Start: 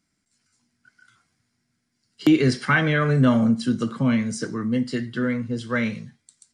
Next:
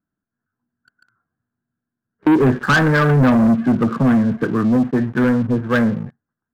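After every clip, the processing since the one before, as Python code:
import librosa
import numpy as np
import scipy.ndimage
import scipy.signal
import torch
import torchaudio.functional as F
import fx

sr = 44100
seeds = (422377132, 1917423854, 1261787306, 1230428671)

y = scipy.signal.sosfilt(scipy.signal.cheby1(6, 1.0, 1700.0, 'lowpass', fs=sr, output='sos'), x)
y = fx.leveller(y, sr, passes=3)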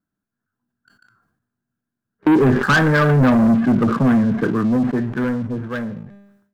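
y = fx.fade_out_tail(x, sr, length_s=2.15)
y = fx.comb_fb(y, sr, f0_hz=200.0, decay_s=0.48, harmonics='all', damping=0.0, mix_pct=50)
y = fx.sustainer(y, sr, db_per_s=59.0)
y = y * 10.0 ** (5.0 / 20.0)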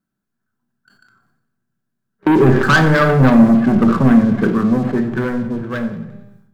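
y = fx.echo_feedback(x, sr, ms=91, feedback_pct=56, wet_db=-16.5)
y = fx.room_shoebox(y, sr, seeds[0], volume_m3=1000.0, walls='furnished', distance_m=1.1)
y = y * 10.0 ** (2.0 / 20.0)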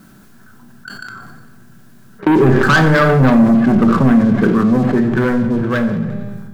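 y = fx.env_flatten(x, sr, amount_pct=50)
y = y * 10.0 ** (-2.0 / 20.0)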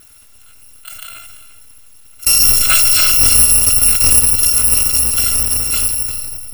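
y = fx.bit_reversed(x, sr, seeds[1], block=256)
y = y + 10.0 ** (-14.5 / 20.0) * np.pad(y, (int(341 * sr / 1000.0), 0))[:len(y)]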